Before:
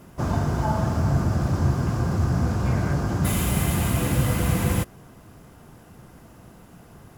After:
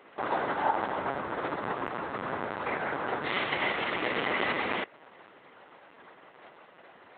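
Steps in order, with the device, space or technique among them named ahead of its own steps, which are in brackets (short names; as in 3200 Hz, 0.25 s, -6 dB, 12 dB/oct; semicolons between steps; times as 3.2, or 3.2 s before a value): talking toy (LPC vocoder at 8 kHz; HPF 530 Hz 12 dB/oct; bell 2000 Hz +7 dB 0.23 oct); gain +2 dB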